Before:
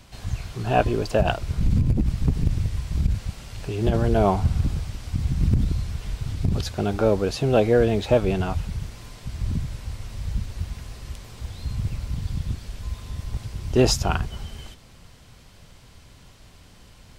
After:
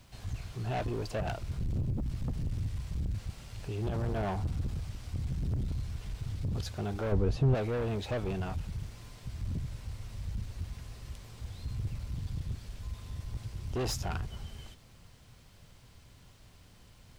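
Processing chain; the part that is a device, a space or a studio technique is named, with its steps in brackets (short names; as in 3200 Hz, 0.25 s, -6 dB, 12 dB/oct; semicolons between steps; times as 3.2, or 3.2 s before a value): open-reel tape (soft clip -21 dBFS, distortion -8 dB; bell 110 Hz +3.5 dB 0.84 oct; white noise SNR 40 dB); 7.12–7.55 tilt -3 dB/oct; gain -8.5 dB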